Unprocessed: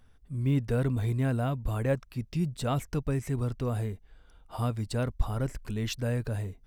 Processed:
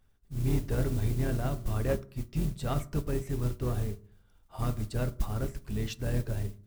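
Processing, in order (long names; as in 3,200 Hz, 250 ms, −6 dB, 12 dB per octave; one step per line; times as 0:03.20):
sub-octave generator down 2 octaves, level −1 dB
soft clipping −20.5 dBFS, distortion −16 dB
noise that follows the level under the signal 21 dB
on a send at −9 dB: convolution reverb RT60 0.60 s, pre-delay 3 ms
on the sum: expander for the loud parts 1.5 to 1, over −41 dBFS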